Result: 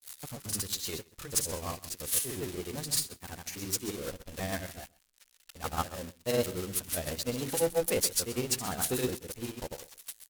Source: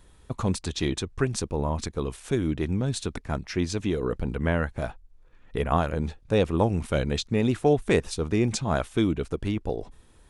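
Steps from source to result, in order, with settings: switching spikes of -15.5 dBFS; low shelf 440 Hz -5.5 dB; notches 50/100/150/200/250/300/350 Hz; grains; rotary speaker horn 6.3 Hz; in parallel at -7 dB: companded quantiser 2-bit; on the sum: pitch shift +2 st; on a send: echo 0.13 s -10.5 dB; on the sum: upward expander 2.5:1, over -38 dBFS; gain -2 dB

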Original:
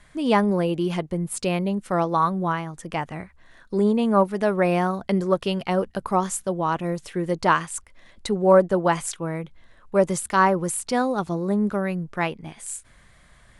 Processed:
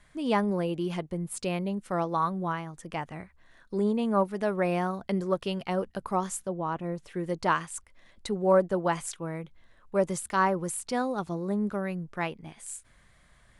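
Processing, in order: 6.46–7.09 high shelf 2000 Hz -> 3200 Hz -10.5 dB; gain -6.5 dB

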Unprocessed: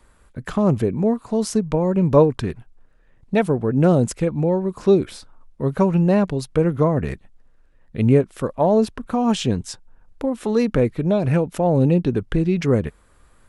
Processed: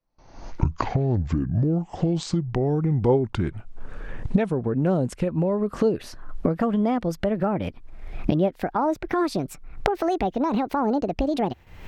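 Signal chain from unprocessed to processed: speed glide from 55% -> 172%; recorder AGC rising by 52 dB/s; gate with hold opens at -35 dBFS; high shelf 5900 Hz -12 dB; gain -6.5 dB

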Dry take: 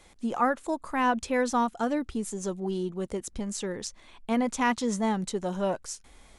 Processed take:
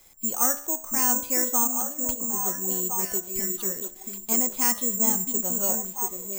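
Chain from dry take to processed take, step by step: high shelf 5200 Hz +10.5 dB; de-hum 71.04 Hz, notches 29; 1.81–2.35 negative-ratio compressor -37 dBFS, ratio -1; delay with a stepping band-pass 0.681 s, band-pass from 310 Hz, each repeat 1.4 oct, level -1 dB; careless resampling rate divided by 6×, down filtered, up zero stuff; gain -5.5 dB

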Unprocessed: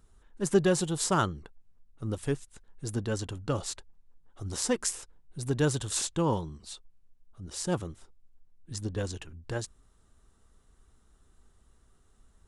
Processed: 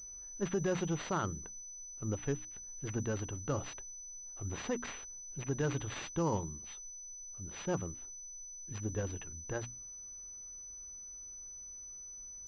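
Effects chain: notches 60/120/180/240/300 Hz; limiter -21 dBFS, peak gain reduction 9.5 dB; pulse-width modulation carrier 6000 Hz; gain -3 dB

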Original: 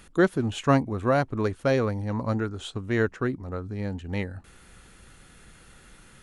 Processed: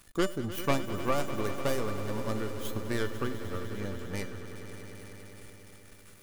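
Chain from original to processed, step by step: tracing distortion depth 0.33 ms; high shelf 7600 Hz +10.5 dB; in parallel at -2.5 dB: limiter -20.5 dBFS, peak gain reduction 11.5 dB; on the sum: transient shaper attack +4 dB, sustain -2 dB; resonator 590 Hz, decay 0.29 s, mix 80%; sample gate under -52.5 dBFS; on a send: swelling echo 0.1 s, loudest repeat 5, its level -14.5 dB

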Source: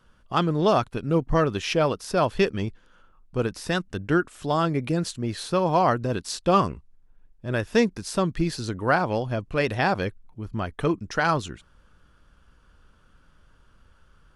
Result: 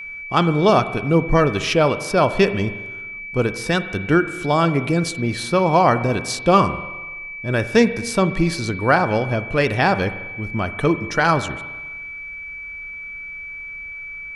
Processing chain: spring tank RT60 1.3 s, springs 42/47 ms, chirp 55 ms, DRR 12 dB; whine 2300 Hz -36 dBFS; gain +5.5 dB

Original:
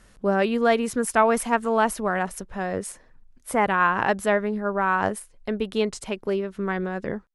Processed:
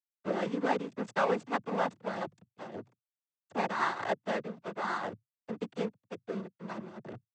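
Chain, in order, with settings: backlash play -18.5 dBFS; noise vocoder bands 16; gain -8 dB

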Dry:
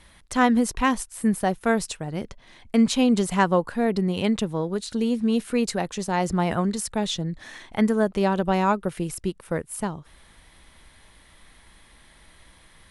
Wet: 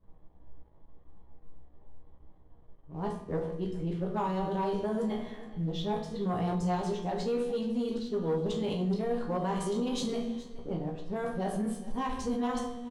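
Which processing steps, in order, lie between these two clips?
whole clip reversed; high shelf 5500 Hz -8 dB; low-pass opened by the level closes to 620 Hz, open at -19 dBFS; resonator 80 Hz, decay 1.1 s, harmonics all, mix 60%; shoebox room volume 45 m³, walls mixed, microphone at 0.55 m; limiter -22.5 dBFS, peak gain reduction 10.5 dB; band shelf 1800 Hz -8 dB 1.2 oct; notches 60/120/180/240 Hz; resonator 60 Hz, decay 0.21 s, harmonics all, mix 90%; on a send: echo 0.42 s -18 dB; on the sum: sample leveller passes 1; gain +3 dB

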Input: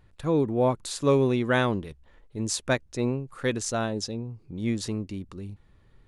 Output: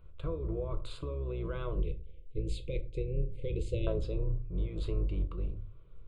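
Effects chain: octaver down 2 oct, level +1 dB; 1.8–3.87 Chebyshev band-stop 540–2100 Hz, order 5; negative-ratio compressor -28 dBFS, ratio -1; tape spacing loss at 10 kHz 24 dB; fixed phaser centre 1200 Hz, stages 8; shoebox room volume 180 m³, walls furnished, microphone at 0.68 m; gain -2.5 dB

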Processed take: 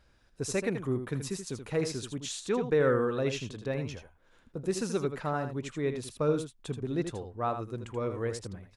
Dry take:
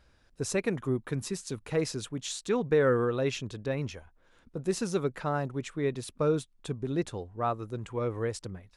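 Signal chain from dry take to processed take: echo 80 ms -8.5 dB; gain -1.5 dB

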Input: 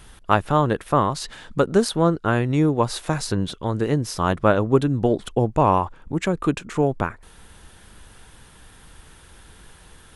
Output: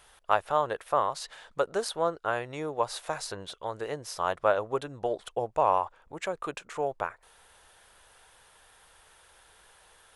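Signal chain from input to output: resonant low shelf 380 Hz -13.5 dB, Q 1.5; gain -7.5 dB

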